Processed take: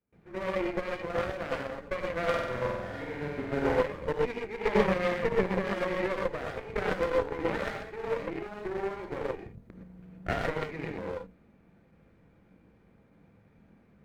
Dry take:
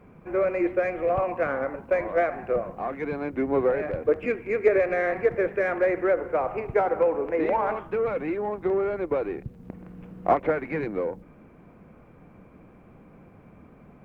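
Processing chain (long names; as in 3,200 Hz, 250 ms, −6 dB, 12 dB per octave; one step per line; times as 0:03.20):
lower of the sound and its delayed copy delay 0.48 ms
reverb whose tail is shaped and stops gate 140 ms rising, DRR −2 dB
noise gate with hold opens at −40 dBFS
0:04.75–0:05.81: parametric band 180 Hz +8.5 dB 0.77 octaves
harmonic generator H 3 −25 dB, 4 −18 dB, 7 −25 dB, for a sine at −6.5 dBFS
0:02.29–0:03.81: flutter between parallel walls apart 8.1 metres, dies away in 0.97 s
level −6.5 dB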